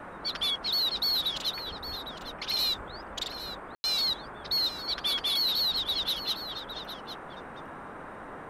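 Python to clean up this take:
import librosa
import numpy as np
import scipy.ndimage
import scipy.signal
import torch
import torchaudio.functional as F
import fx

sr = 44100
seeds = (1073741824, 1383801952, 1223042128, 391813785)

y = fx.fix_ambience(x, sr, seeds[0], print_start_s=7.82, print_end_s=8.32, start_s=3.75, end_s=3.84)
y = fx.noise_reduce(y, sr, print_start_s=7.82, print_end_s=8.32, reduce_db=30.0)
y = fx.fix_echo_inverse(y, sr, delay_ms=808, level_db=-12.0)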